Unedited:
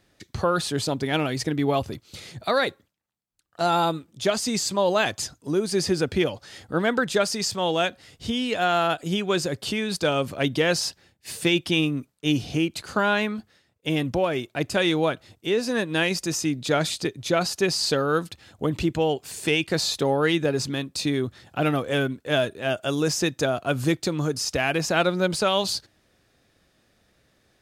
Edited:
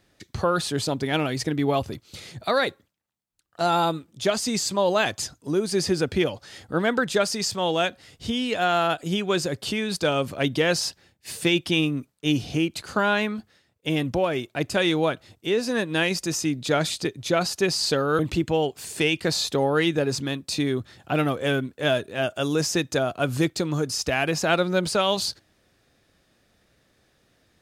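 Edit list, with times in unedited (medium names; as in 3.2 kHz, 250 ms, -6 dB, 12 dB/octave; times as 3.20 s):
18.19–18.66 s: delete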